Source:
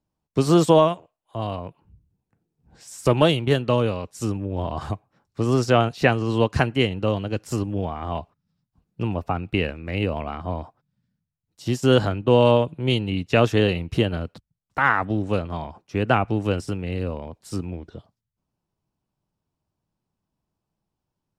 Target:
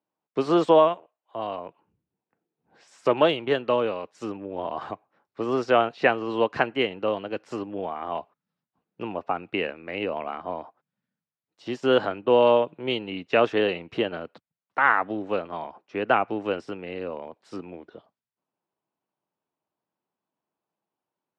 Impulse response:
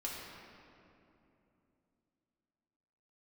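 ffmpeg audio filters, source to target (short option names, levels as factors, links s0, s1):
-af "highpass=360,lowpass=2800"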